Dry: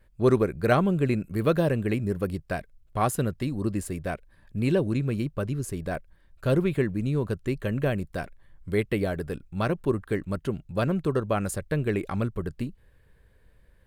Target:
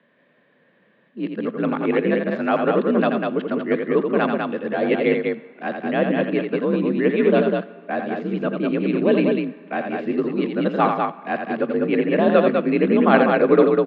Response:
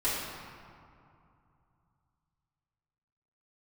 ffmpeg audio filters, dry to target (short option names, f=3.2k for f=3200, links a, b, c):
-filter_complex "[0:a]areverse,aecho=1:1:84.55|198.3:0.501|0.631,asplit=2[a][b];[1:a]atrim=start_sample=2205,lowshelf=f=380:g=-8.5[c];[b][c]afir=irnorm=-1:irlink=0,volume=-24dB[d];[a][d]amix=inputs=2:normalize=0,highpass=f=150:t=q:w=0.5412,highpass=f=150:t=q:w=1.307,lowpass=f=3.5k:t=q:w=0.5176,lowpass=f=3.5k:t=q:w=0.7071,lowpass=f=3.5k:t=q:w=1.932,afreqshift=50,volume=6dB"